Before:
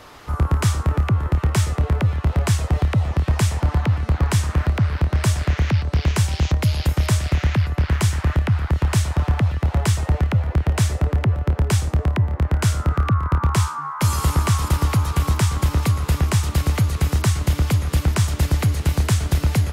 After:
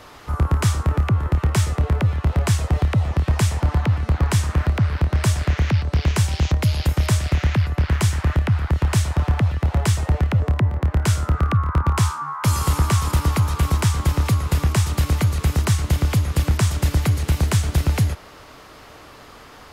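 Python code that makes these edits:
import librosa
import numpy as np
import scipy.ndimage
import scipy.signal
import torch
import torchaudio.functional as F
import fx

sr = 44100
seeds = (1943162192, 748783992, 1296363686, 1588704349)

y = fx.edit(x, sr, fx.cut(start_s=10.4, length_s=1.57), tone=tone)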